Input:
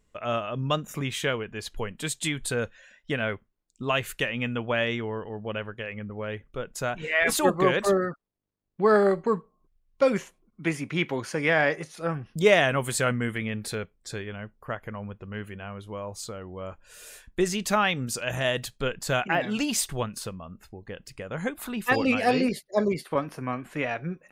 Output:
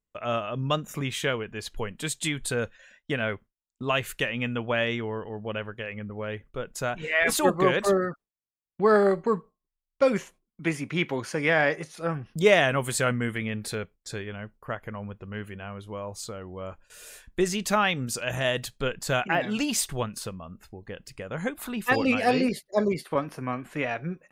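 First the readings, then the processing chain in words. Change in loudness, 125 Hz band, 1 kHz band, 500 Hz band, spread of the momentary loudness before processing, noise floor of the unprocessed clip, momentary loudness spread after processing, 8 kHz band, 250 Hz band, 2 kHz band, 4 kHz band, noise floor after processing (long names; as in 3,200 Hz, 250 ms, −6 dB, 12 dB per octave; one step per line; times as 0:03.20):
0.0 dB, 0.0 dB, 0.0 dB, 0.0 dB, 16 LU, −70 dBFS, 16 LU, 0.0 dB, 0.0 dB, 0.0 dB, 0.0 dB, below −85 dBFS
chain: noise gate with hold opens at −43 dBFS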